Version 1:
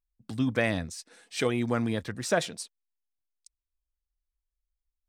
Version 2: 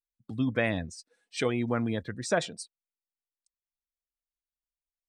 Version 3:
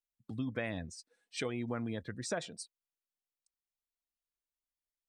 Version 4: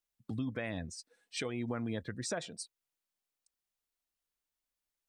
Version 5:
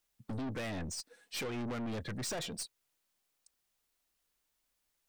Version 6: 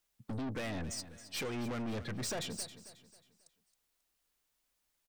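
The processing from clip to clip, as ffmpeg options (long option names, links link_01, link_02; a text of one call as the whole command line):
ffmpeg -i in.wav -af "afftdn=noise_reduction=18:noise_floor=-42,volume=-1dB" out.wav
ffmpeg -i in.wav -af "acompressor=threshold=-31dB:ratio=2.5,volume=-4dB" out.wav
ffmpeg -i in.wav -af "alimiter=level_in=6.5dB:limit=-24dB:level=0:latency=1:release=491,volume=-6.5dB,volume=4dB" out.wav
ffmpeg -i in.wav -af "aeval=exprs='(tanh(178*val(0)+0.2)-tanh(0.2))/178':channel_layout=same,volume=9dB" out.wav
ffmpeg -i in.wav -af "aecho=1:1:270|540|810|1080:0.2|0.0758|0.0288|0.0109" out.wav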